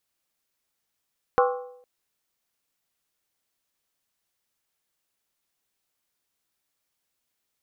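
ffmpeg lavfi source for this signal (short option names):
-f lavfi -i "aevalsrc='0.15*pow(10,-3*t/0.73)*sin(2*PI*496*t)+0.112*pow(10,-3*t/0.578)*sin(2*PI*790.6*t)+0.0841*pow(10,-3*t/0.499)*sin(2*PI*1059.5*t)+0.0631*pow(10,-3*t/0.482)*sin(2*PI*1138.8*t)+0.0473*pow(10,-3*t/0.448)*sin(2*PI*1315.9*t)+0.0355*pow(10,-3*t/0.427)*sin(2*PI*1447.3*t)':d=0.46:s=44100"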